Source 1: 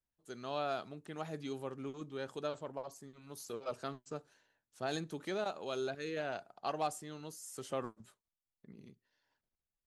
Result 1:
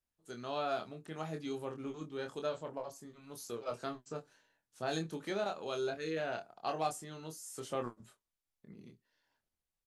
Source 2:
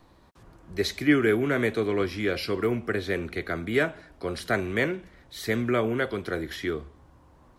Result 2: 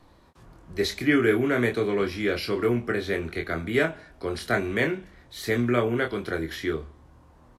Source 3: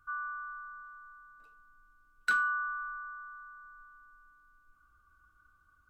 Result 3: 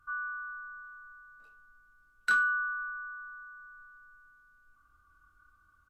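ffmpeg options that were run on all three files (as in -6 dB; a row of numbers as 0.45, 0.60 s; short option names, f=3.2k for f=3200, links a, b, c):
-filter_complex "[0:a]asplit=2[a][b];[b]adelay=25,volume=-5dB[c];[a][c]amix=inputs=2:normalize=0" -ar 32000 -c:a libvorbis -b:a 128k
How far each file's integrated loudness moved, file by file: +1.5, +1.0, +2.5 LU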